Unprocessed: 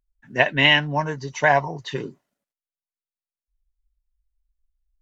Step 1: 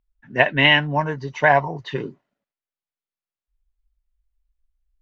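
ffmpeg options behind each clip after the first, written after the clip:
ffmpeg -i in.wav -af "lowpass=3300,volume=2dB" out.wav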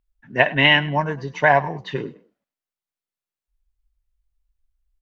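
ffmpeg -i in.wav -filter_complex "[0:a]asplit=3[link_01][link_02][link_03];[link_02]adelay=101,afreqshift=35,volume=-20dB[link_04];[link_03]adelay=202,afreqshift=70,volume=-30.2dB[link_05];[link_01][link_04][link_05]amix=inputs=3:normalize=0" out.wav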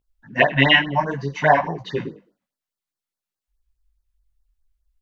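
ffmpeg -i in.wav -af "flanger=delay=17:depth=6.5:speed=0.55,afftfilt=real='re*(1-between(b*sr/1024,340*pow(2900/340,0.5+0.5*sin(2*PI*4.8*pts/sr))/1.41,340*pow(2900/340,0.5+0.5*sin(2*PI*4.8*pts/sr))*1.41))':imag='im*(1-between(b*sr/1024,340*pow(2900/340,0.5+0.5*sin(2*PI*4.8*pts/sr))/1.41,340*pow(2900/340,0.5+0.5*sin(2*PI*4.8*pts/sr))*1.41))':win_size=1024:overlap=0.75,volume=5dB" out.wav

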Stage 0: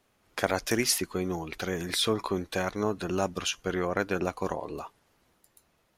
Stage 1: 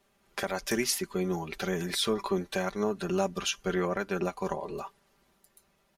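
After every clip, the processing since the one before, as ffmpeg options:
ffmpeg -i in.wav -af "aecho=1:1:5.1:0.69,alimiter=limit=-14.5dB:level=0:latency=1:release=379,volume=-1.5dB" out.wav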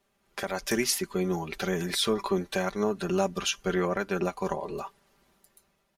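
ffmpeg -i in.wav -af "dynaudnorm=framelen=130:gausssize=7:maxgain=5.5dB,volume=-3.5dB" out.wav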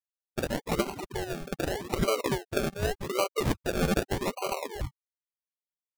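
ffmpeg -i in.wav -af "highpass=frequency=430:width=0.5412,highpass=frequency=430:width=1.3066,equalizer=frequency=830:width_type=q:width=4:gain=-5,equalizer=frequency=1200:width_type=q:width=4:gain=10,equalizer=frequency=2100:width_type=q:width=4:gain=7,equalizer=frequency=3000:width_type=q:width=4:gain=6,lowpass=frequency=3600:width=0.5412,lowpass=frequency=3600:width=1.3066,afftfilt=real='re*gte(hypot(re,im),0.0316)':imag='im*gte(hypot(re,im),0.0316)':win_size=1024:overlap=0.75,acrusher=samples=35:mix=1:aa=0.000001:lfo=1:lforange=21:lforate=0.84,volume=1dB" out.wav

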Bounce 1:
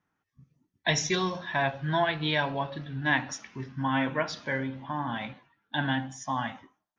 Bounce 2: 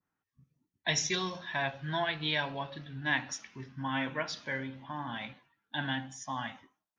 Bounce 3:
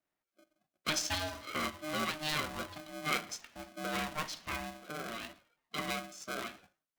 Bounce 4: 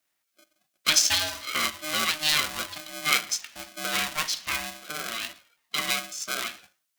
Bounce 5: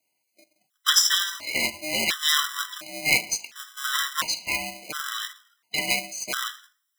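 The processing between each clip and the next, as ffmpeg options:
ffmpeg -i in.wav -af "adynamicequalizer=threshold=0.00794:dfrequency=1700:dqfactor=0.7:tfrequency=1700:tqfactor=0.7:attack=5:release=100:ratio=0.375:range=3:mode=boostabove:tftype=highshelf,volume=-7dB" out.wav
ffmpeg -i in.wav -af "aeval=exprs='val(0)*sgn(sin(2*PI*460*n/s))':channel_layout=same,volume=-3dB" out.wav
ffmpeg -i in.wav -af "tiltshelf=frequency=1400:gain=-8,volume=7.5dB" out.wav
ffmpeg -i in.wav -af "aeval=exprs='0.891*(cos(1*acos(clip(val(0)/0.891,-1,1)))-cos(1*PI/2))+0.126*(cos(4*acos(clip(val(0)/0.891,-1,1)))-cos(4*PI/2))':channel_layout=same,lowshelf=frequency=62:gain=-10,afftfilt=real='re*gt(sin(2*PI*0.71*pts/sr)*(1-2*mod(floor(b*sr/1024/1000),2)),0)':imag='im*gt(sin(2*PI*0.71*pts/sr)*(1-2*mod(floor(b*sr/1024/1000),2)),0)':win_size=1024:overlap=0.75,volume=4.5dB" out.wav

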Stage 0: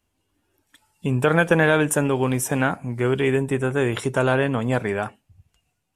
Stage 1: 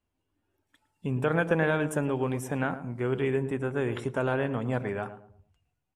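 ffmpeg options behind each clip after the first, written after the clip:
ffmpeg -i in.wav -filter_complex "[0:a]highshelf=frequency=3600:gain=-10,asplit=2[link_01][link_02];[link_02]adelay=111,lowpass=frequency=920:poles=1,volume=-10dB,asplit=2[link_03][link_04];[link_04]adelay=111,lowpass=frequency=920:poles=1,volume=0.37,asplit=2[link_05][link_06];[link_06]adelay=111,lowpass=frequency=920:poles=1,volume=0.37,asplit=2[link_07][link_08];[link_08]adelay=111,lowpass=frequency=920:poles=1,volume=0.37[link_09];[link_03][link_05][link_07][link_09]amix=inputs=4:normalize=0[link_10];[link_01][link_10]amix=inputs=2:normalize=0,volume=-7.5dB" out.wav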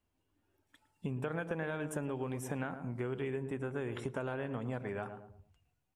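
ffmpeg -i in.wav -af "acompressor=threshold=-35dB:ratio=5" out.wav

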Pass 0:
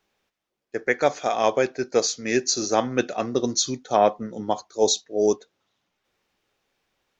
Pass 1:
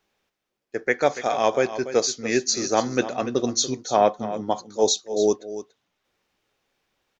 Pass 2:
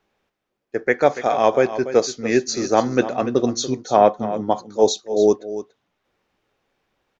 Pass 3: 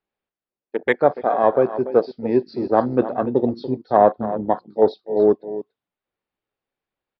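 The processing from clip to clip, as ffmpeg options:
ffmpeg -i in.wav -af "aecho=1:1:287:0.224" out.wav
ffmpeg -i in.wav -af "highshelf=frequency=2900:gain=-10.5,volume=5dB" out.wav
ffmpeg -i in.wav -af "aresample=11025,aresample=44100,afwtdn=0.0708" out.wav

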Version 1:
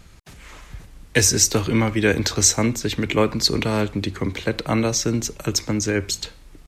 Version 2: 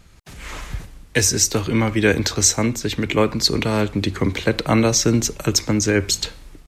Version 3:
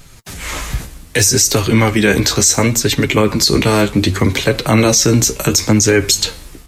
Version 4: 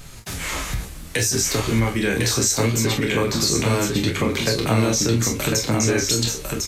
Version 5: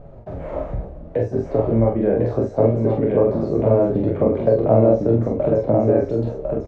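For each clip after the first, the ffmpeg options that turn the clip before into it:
ffmpeg -i in.wav -af "dynaudnorm=framelen=150:gausssize=5:maxgain=13dB,volume=-2.5dB" out.wav
ffmpeg -i in.wav -af "highshelf=frequency=6100:gain=10,flanger=delay=7.1:depth=8.8:regen=32:speed=0.67:shape=sinusoidal,alimiter=level_in=13dB:limit=-1dB:release=50:level=0:latency=1,volume=-1dB" out.wav
ffmpeg -i in.wav -filter_complex "[0:a]asplit=2[link_01][link_02];[link_02]aecho=0:1:26|44:0.501|0.398[link_03];[link_01][link_03]amix=inputs=2:normalize=0,acompressor=threshold=-27dB:ratio=2,asplit=2[link_04][link_05];[link_05]aecho=0:1:1052:0.631[link_06];[link_04][link_06]amix=inputs=2:normalize=0" out.wav
ffmpeg -i in.wav -filter_complex "[0:a]lowpass=frequency=610:width_type=q:width=4.9,asplit=2[link_01][link_02];[link_02]adelay=44,volume=-9.5dB[link_03];[link_01][link_03]amix=inputs=2:normalize=0,volume=-1dB" out.wav

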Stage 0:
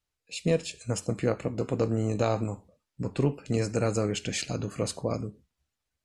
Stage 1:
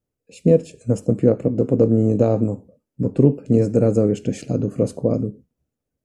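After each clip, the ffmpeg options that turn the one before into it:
ffmpeg -i in.wav -af "equalizer=frequency=125:width_type=o:width=1:gain=8,equalizer=frequency=250:width_type=o:width=1:gain=11,equalizer=frequency=500:width_type=o:width=1:gain=10,equalizer=frequency=1000:width_type=o:width=1:gain=-5,equalizer=frequency=2000:width_type=o:width=1:gain=-5,equalizer=frequency=4000:width_type=o:width=1:gain=-10,equalizer=frequency=8000:width_type=o:width=1:gain=-3" out.wav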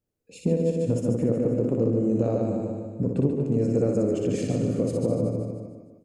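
ffmpeg -i in.wav -filter_complex "[0:a]asplit=2[link_01][link_02];[link_02]aecho=0:1:150|300|450|600|750:0.447|0.192|0.0826|0.0355|0.0153[link_03];[link_01][link_03]amix=inputs=2:normalize=0,acompressor=threshold=-18dB:ratio=6,asplit=2[link_04][link_05];[link_05]aecho=0:1:60|138|239.4|371.2|542.6:0.631|0.398|0.251|0.158|0.1[link_06];[link_04][link_06]amix=inputs=2:normalize=0,volume=-3dB" out.wav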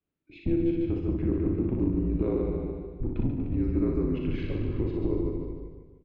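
ffmpeg -i in.wav -filter_complex "[0:a]asubboost=boost=10.5:cutoff=91,highpass=frequency=200:width_type=q:width=0.5412,highpass=frequency=200:width_type=q:width=1.307,lowpass=frequency=3600:width_type=q:width=0.5176,lowpass=frequency=3600:width_type=q:width=0.7071,lowpass=frequency=3600:width_type=q:width=1.932,afreqshift=-160,asplit=2[link_01][link_02];[link_02]adelay=38,volume=-8dB[link_03];[link_01][link_03]amix=inputs=2:normalize=0" out.wav

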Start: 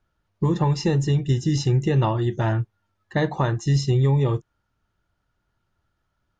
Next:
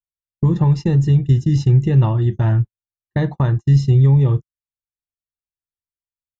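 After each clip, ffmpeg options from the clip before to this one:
ffmpeg -i in.wav -af "agate=range=-41dB:threshold=-26dB:ratio=16:detection=peak,bass=frequency=250:gain=11,treble=frequency=4000:gain=-4,volume=-2.5dB" out.wav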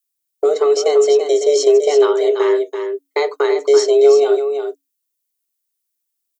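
ffmpeg -i in.wav -af "crystalizer=i=6.5:c=0,afreqshift=280,aecho=1:1:336:0.422" out.wav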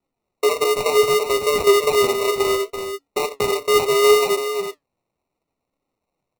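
ffmpeg -i in.wav -af "acrusher=samples=27:mix=1:aa=0.000001,flanger=delay=3.6:depth=5:regen=73:speed=0.69:shape=sinusoidal" out.wav

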